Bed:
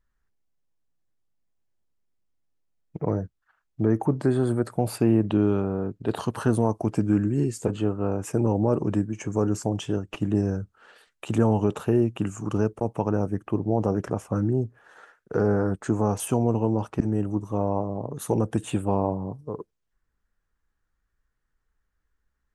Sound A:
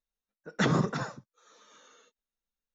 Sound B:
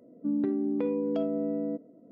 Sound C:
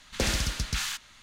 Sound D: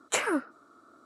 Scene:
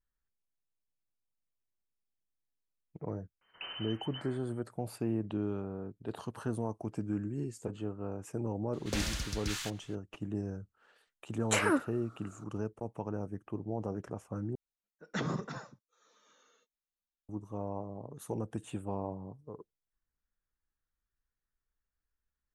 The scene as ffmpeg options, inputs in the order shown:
-filter_complex "[3:a]asplit=2[a][b];[0:a]volume=-13dB[c];[a]lowpass=f=2.6k:t=q:w=0.5098,lowpass=f=2.6k:t=q:w=0.6013,lowpass=f=2.6k:t=q:w=0.9,lowpass=f=2.6k:t=q:w=2.563,afreqshift=-3100[d];[4:a]alimiter=level_in=14dB:limit=-1dB:release=50:level=0:latency=1[e];[c]asplit=2[f][g];[f]atrim=end=14.554[h];[1:a]atrim=end=2.74,asetpts=PTS-STARTPTS,volume=-9dB[i];[g]atrim=start=17.286[j];[d]atrim=end=1.22,asetpts=PTS-STARTPTS,volume=-15.5dB,afade=t=in:d=0.004:c=hsin,afade=t=out:st=1.216:d=0.004:c=hsin,adelay=150381S[k];[b]atrim=end=1.22,asetpts=PTS-STARTPTS,volume=-7.5dB,afade=t=in:d=0.004:c=hsin,afade=t=out:st=1.216:d=0.004:c=hsin,adelay=8730[l];[e]atrim=end=1.05,asetpts=PTS-STARTPTS,volume=-14dB,afade=t=in:d=0.004:c=hsin,afade=t=out:st=1.046:d=0.004:c=hsin,adelay=11390[m];[h][i]acrossfade=d=0.004:c1=hsin:c2=hsin[n];[n][j]acrossfade=d=0.004:c1=hsin:c2=hsin[o];[o][k][l][m]amix=inputs=4:normalize=0"

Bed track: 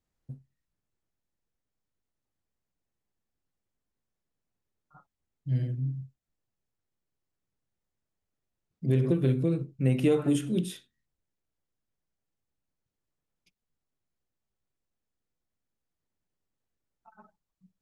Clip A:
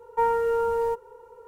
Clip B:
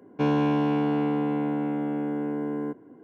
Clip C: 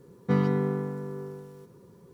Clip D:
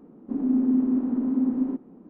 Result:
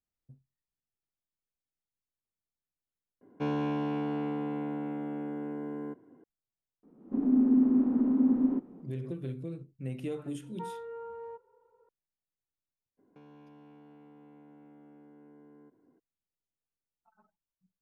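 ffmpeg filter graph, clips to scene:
-filter_complex "[2:a]asplit=2[a][b];[0:a]volume=-12.5dB[c];[4:a]dynaudnorm=f=140:g=3:m=10dB[d];[1:a]highpass=100,lowpass=2.3k[e];[b]acompressor=threshold=-36dB:ratio=6:attack=3.2:release=140:knee=1:detection=peak[f];[c]asplit=2[g][h];[g]atrim=end=3.214[i];[a]atrim=end=3.03,asetpts=PTS-STARTPTS,volume=-8dB[j];[h]atrim=start=6.236[k];[d]atrim=end=2.09,asetpts=PTS-STARTPTS,volume=-11dB,afade=t=in:d=0.004:c=hsin,afade=t=out:st=2.086:d=0.004:c=hsin,adelay=6830[l];[e]atrim=end=1.47,asetpts=PTS-STARTPTS,volume=-18dB,afade=t=in:d=0.004:c=hsin,afade=t=out:st=1.466:d=0.004:c=hsin,adelay=459522S[m];[f]atrim=end=3.03,asetpts=PTS-STARTPTS,volume=-17dB,afade=t=in:d=0.02,afade=t=out:st=3.01:d=0.02,adelay=12970[n];[i][j]acrossfade=d=0.004:c1=hsin:c2=hsin[o];[o][k]acrossfade=d=0.004:c1=hsin:c2=hsin[p];[p][l][m][n]amix=inputs=4:normalize=0"

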